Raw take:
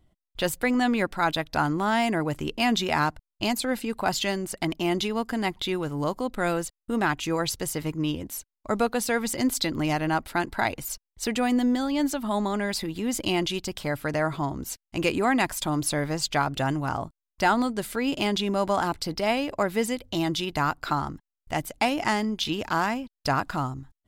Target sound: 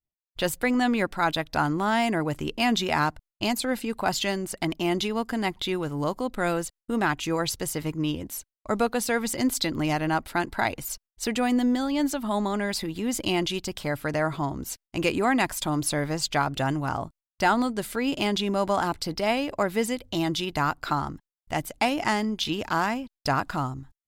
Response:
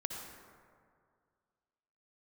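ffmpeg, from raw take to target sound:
-af "agate=range=-33dB:threshold=-45dB:ratio=3:detection=peak"

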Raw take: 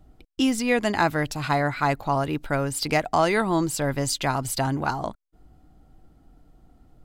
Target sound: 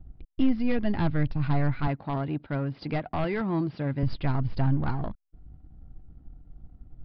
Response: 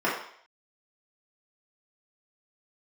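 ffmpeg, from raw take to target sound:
-filter_complex "[0:a]aeval=exprs='if(lt(val(0),0),0.447*val(0),val(0))':c=same,asettb=1/sr,asplit=3[a][b][c];[a]atrim=end=1.874[d];[b]atrim=start=1.87:end=4.03,asetpts=PTS-STARTPTS,afade=t=in:d=0.004:c=qsin,afade=t=out:st=2.156:d=0.004:c=qsin,highpass=170[e];[c]atrim=start=4.026[f];[d][e]acrossfade=d=0.004:c1=hsin:c2=qsin[g];[g][f]acrossfade=d=0.004:c1=qsin:c2=hsin,aeval=exprs='0.15*(abs(mod(val(0)/0.15+3,4)-2)-1)':c=same,bass=f=250:g=7,treble=f=4k:g=-12,aresample=11025,aresample=44100,lowshelf=f=250:g=11,volume=-7dB"

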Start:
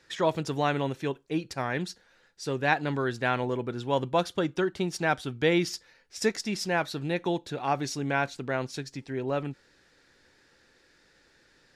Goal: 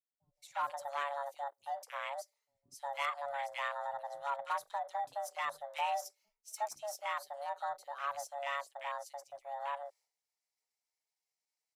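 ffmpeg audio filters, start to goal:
-filter_complex "[0:a]afreqshift=440,bandreject=f=60:t=h:w=6,bandreject=f=120:t=h:w=6,bandreject=f=180:t=h:w=6,bandreject=f=240:t=h:w=6,bandreject=f=300:t=h:w=6,bandreject=f=360:t=h:w=6,bandreject=f=420:t=h:w=6,bandreject=f=480:t=h:w=6,bandreject=f=540:t=h:w=6,bandreject=f=600:t=h:w=6,aeval=exprs='0.355*(cos(1*acos(clip(val(0)/0.355,-1,1)))-cos(1*PI/2))+0.0158*(cos(4*acos(clip(val(0)/0.355,-1,1)))-cos(4*PI/2))+0.0398*(cos(5*acos(clip(val(0)/0.355,-1,1)))-cos(5*PI/2))':c=same,agate=range=-33dB:threshold=-50dB:ratio=3:detection=peak,equalizer=f=3.4k:w=0.32:g=-13,acrossover=split=300|1900[a][b][c];[c]adelay=320[d];[b]adelay=360[e];[a][e][d]amix=inputs=3:normalize=0,afwtdn=0.00891,afreqshift=-20,aderivative,volume=11.5dB"

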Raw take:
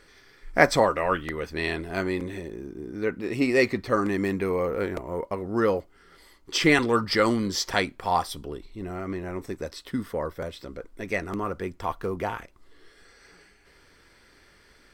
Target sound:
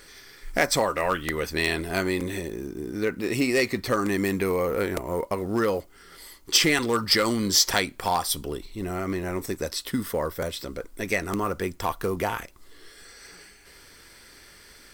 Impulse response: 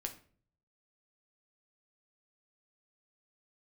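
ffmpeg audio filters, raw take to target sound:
-af "acompressor=threshold=-26dB:ratio=2.5,aeval=exprs='clip(val(0),-1,0.0944)':c=same,crystalizer=i=2.5:c=0,acrusher=bits=8:mode=log:mix=0:aa=0.000001,volume=3.5dB"

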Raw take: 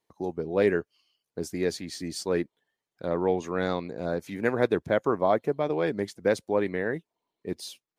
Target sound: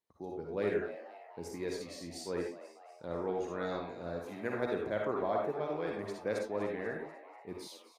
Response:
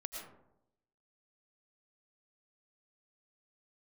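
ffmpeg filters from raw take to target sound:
-filter_complex "[0:a]asplit=6[a][b][c][d][e][f];[b]adelay=244,afreqshift=140,volume=-15dB[g];[c]adelay=488,afreqshift=280,volume=-20.4dB[h];[d]adelay=732,afreqshift=420,volume=-25.7dB[i];[e]adelay=976,afreqshift=560,volume=-31.1dB[j];[f]adelay=1220,afreqshift=700,volume=-36.4dB[k];[a][g][h][i][j][k]amix=inputs=6:normalize=0[l];[1:a]atrim=start_sample=2205,afade=t=out:st=0.35:d=0.01,atrim=end_sample=15876,asetrate=88200,aresample=44100[m];[l][m]afir=irnorm=-1:irlink=0,volume=-1.5dB"

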